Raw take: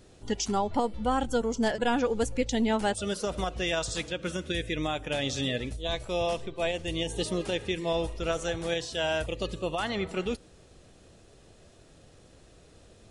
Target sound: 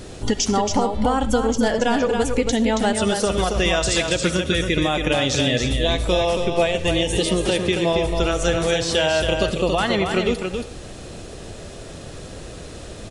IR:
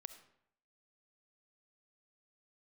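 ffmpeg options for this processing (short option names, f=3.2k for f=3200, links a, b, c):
-filter_complex "[0:a]acompressor=threshold=-36dB:ratio=6,aecho=1:1:276:0.531,asplit=2[a][b];[1:a]atrim=start_sample=2205,afade=t=out:st=0.18:d=0.01,atrim=end_sample=8379,asetrate=41013,aresample=44100[c];[b][c]afir=irnorm=-1:irlink=0,volume=12.5dB[d];[a][d]amix=inputs=2:normalize=0,volume=8dB"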